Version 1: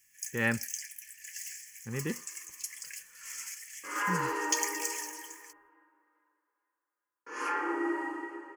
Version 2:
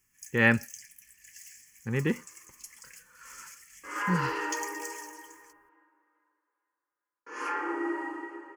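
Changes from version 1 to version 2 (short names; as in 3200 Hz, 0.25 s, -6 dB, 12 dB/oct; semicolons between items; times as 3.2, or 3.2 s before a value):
speech +7.0 dB; first sound -7.5 dB; second sound: add high shelf 8100 Hz -6 dB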